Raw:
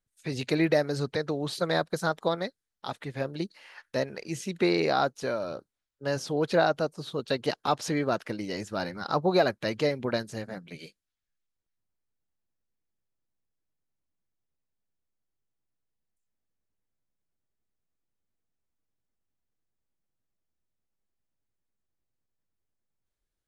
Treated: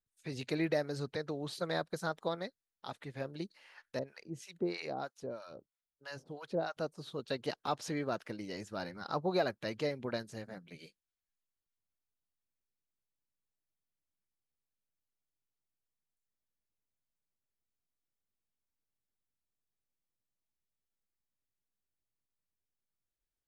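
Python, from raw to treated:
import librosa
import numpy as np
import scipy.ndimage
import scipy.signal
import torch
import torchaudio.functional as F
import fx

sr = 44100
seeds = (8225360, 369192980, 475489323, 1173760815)

y = fx.harmonic_tremolo(x, sr, hz=3.1, depth_pct=100, crossover_hz=790.0, at=(3.99, 6.77))
y = F.gain(torch.from_numpy(y), -8.5).numpy()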